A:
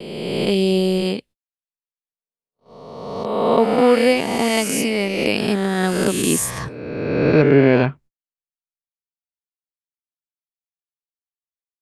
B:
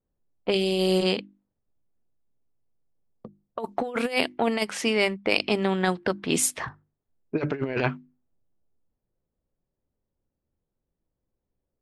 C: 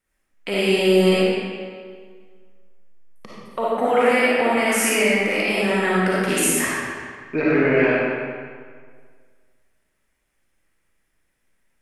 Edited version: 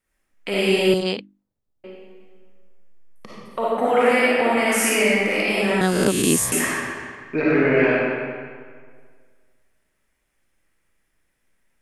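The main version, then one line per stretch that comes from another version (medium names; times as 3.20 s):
C
0.94–1.84 s: from B
5.81–6.52 s: from A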